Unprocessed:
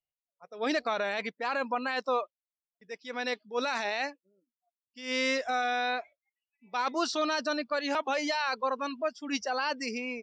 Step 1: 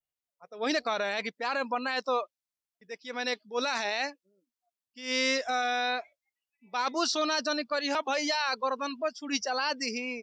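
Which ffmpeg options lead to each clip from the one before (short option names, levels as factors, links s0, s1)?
-af "adynamicequalizer=threshold=0.00282:dfrequency=5300:dqfactor=1.1:tfrequency=5300:tqfactor=1.1:attack=5:release=100:ratio=0.375:range=3:mode=boostabove:tftype=bell"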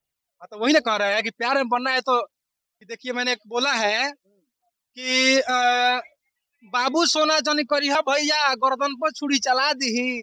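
-af "aphaser=in_gain=1:out_gain=1:delay=1.8:decay=0.42:speed=1.3:type=triangular,volume=2.66"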